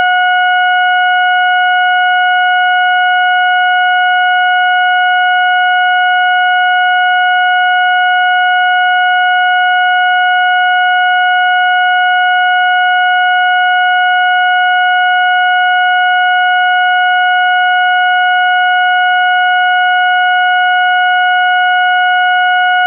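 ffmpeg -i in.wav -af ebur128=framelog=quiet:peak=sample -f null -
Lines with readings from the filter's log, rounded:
Integrated loudness:
  I:          -9.1 LUFS
  Threshold: -19.1 LUFS
Loudness range:
  LRA:         0.0 LU
  Threshold: -29.1 LUFS
  LRA low:    -9.1 LUFS
  LRA high:   -9.1 LUFS
Sample peak:
  Peak:       -2.9 dBFS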